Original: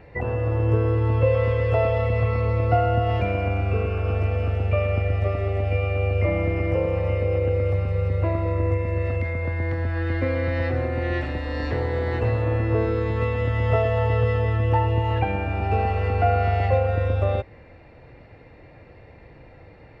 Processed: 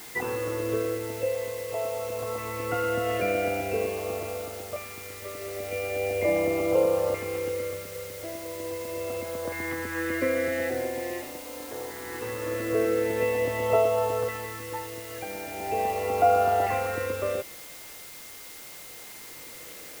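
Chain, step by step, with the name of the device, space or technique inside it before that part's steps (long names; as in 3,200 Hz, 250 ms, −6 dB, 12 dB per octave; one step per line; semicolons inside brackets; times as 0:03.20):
shortwave radio (band-pass filter 330–2,700 Hz; amplitude tremolo 0.3 Hz, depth 73%; auto-filter notch saw up 0.42 Hz 530–2,300 Hz; steady tone 2,100 Hz −56 dBFS; white noise bed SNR 15 dB)
level +3.5 dB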